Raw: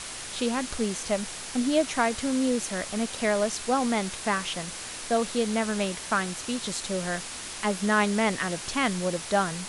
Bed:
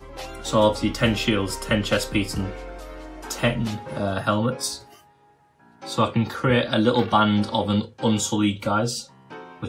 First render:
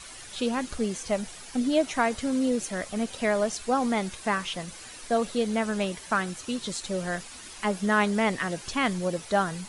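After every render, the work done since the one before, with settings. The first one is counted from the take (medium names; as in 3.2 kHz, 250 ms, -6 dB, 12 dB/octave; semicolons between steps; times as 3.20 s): noise reduction 10 dB, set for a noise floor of -38 dBFS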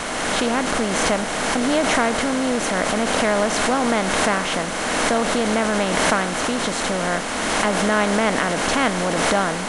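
spectral levelling over time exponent 0.4; swell ahead of each attack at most 21 dB/s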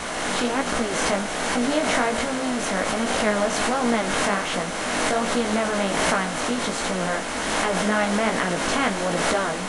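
chorus 1.3 Hz, delay 16.5 ms, depth 4.4 ms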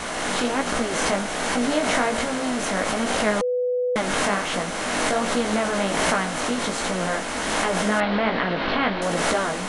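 3.41–3.96 s: bleep 496 Hz -20 dBFS; 8.00–9.02 s: steep low-pass 4.4 kHz 48 dB/octave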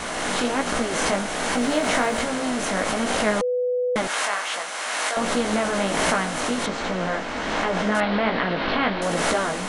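1.53–2.21 s: small samples zeroed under -43 dBFS; 4.07–5.17 s: high-pass 770 Hz; 6.66–7.95 s: distance through air 120 m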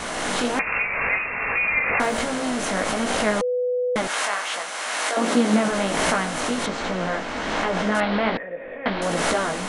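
0.59–2.00 s: frequency inversion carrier 2.7 kHz; 5.07–5.69 s: resonant high-pass 320 Hz -> 170 Hz, resonance Q 2.2; 8.37–8.86 s: cascade formant filter e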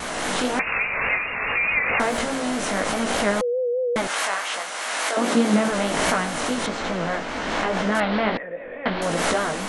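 vibrato 4.8 Hz 66 cents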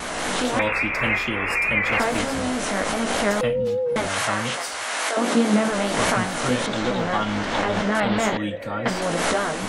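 add bed -7 dB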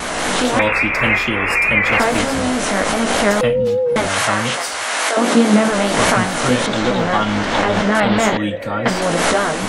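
trim +6.5 dB; peak limiter -1 dBFS, peak gain reduction 1 dB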